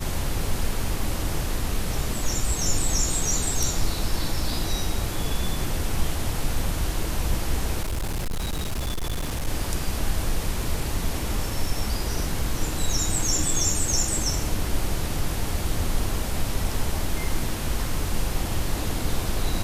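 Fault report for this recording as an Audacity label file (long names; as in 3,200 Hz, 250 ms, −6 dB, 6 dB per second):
7.830000	9.480000	clipping −23.5 dBFS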